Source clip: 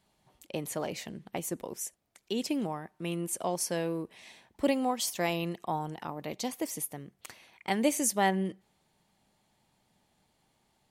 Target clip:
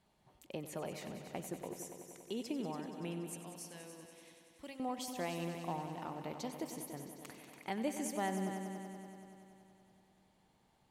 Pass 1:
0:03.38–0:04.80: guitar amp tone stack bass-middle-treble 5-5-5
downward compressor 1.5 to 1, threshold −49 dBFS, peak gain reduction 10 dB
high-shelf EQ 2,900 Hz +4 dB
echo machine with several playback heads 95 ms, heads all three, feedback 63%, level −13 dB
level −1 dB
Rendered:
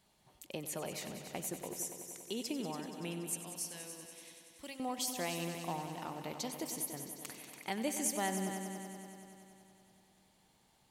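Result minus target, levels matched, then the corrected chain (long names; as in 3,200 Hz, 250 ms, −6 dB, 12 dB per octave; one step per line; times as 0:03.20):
8,000 Hz band +6.5 dB
0:03.38–0:04.80: guitar amp tone stack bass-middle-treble 5-5-5
downward compressor 1.5 to 1, threshold −49 dBFS, peak gain reduction 10 dB
high-shelf EQ 2,900 Hz −6.5 dB
echo machine with several playback heads 95 ms, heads all three, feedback 63%, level −13 dB
level −1 dB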